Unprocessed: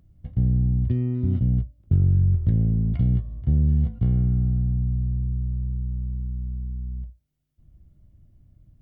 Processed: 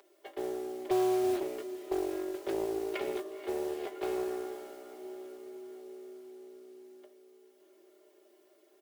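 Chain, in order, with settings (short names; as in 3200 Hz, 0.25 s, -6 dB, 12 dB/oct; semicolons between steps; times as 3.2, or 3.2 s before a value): steep high-pass 310 Hz 96 dB/oct; comb 5 ms, depth 98%; in parallel at +1 dB: limiter -37.5 dBFS, peak gain reduction 11.5 dB; on the sum: modulation noise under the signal 19 dB; on a send: diffused feedback echo 0.489 s, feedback 60%, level -12 dB; on the sum: Doppler distortion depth 0.37 ms; gain +4 dB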